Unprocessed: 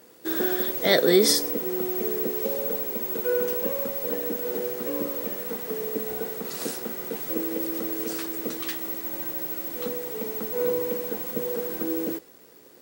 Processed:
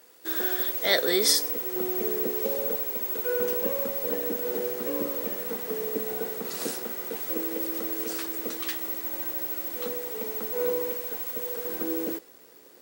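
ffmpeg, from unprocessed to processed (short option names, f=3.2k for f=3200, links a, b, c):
-af "asetnsamples=n=441:p=0,asendcmd='1.76 highpass f 230;2.75 highpass f 610;3.4 highpass f 170;6.83 highpass f 400;10.91 highpass f 1000;11.65 highpass f 300',highpass=f=850:p=1"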